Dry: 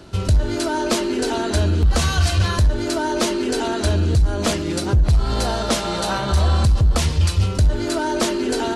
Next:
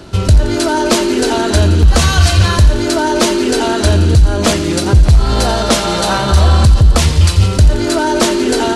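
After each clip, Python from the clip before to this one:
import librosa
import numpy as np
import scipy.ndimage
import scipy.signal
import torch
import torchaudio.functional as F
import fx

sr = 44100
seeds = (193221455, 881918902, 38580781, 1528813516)

y = fx.echo_wet_highpass(x, sr, ms=86, feedback_pct=79, hz=1600.0, wet_db=-13.5)
y = F.gain(torch.from_numpy(y), 8.0).numpy()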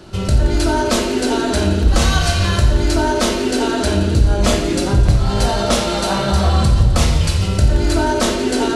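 y = fx.room_shoebox(x, sr, seeds[0], volume_m3=330.0, walls='mixed', distance_m=1.0)
y = F.gain(torch.from_numpy(y), -6.5).numpy()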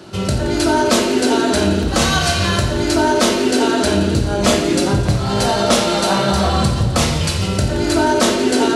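y = scipy.signal.sosfilt(scipy.signal.butter(2, 120.0, 'highpass', fs=sr, output='sos'), x)
y = F.gain(torch.from_numpy(y), 2.5).numpy()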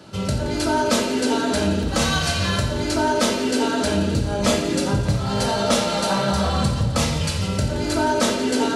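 y = fx.notch_comb(x, sr, f0_hz=360.0)
y = F.gain(torch.from_numpy(y), -4.0).numpy()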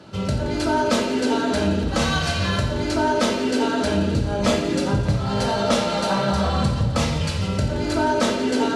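y = fx.high_shelf(x, sr, hz=7100.0, db=-11.5)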